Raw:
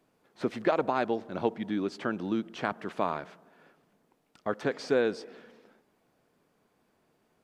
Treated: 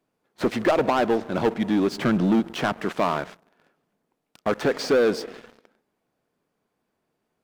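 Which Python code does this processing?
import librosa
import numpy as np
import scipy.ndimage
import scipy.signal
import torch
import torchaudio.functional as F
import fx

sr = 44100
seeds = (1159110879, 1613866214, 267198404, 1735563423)

y = fx.peak_eq(x, sr, hz=150.0, db=9.0, octaves=1.1, at=(1.91, 2.4))
y = fx.leveller(y, sr, passes=3)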